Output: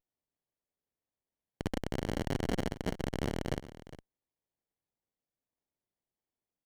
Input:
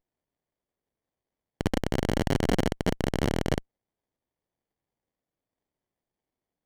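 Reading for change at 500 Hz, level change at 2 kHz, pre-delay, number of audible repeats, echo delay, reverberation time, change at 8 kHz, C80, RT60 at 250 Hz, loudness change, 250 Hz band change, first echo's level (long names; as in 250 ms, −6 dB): −8.0 dB, −8.0 dB, no reverb audible, 1, 409 ms, no reverb audible, −8.0 dB, no reverb audible, no reverb audible, −8.0 dB, −8.0 dB, −15.5 dB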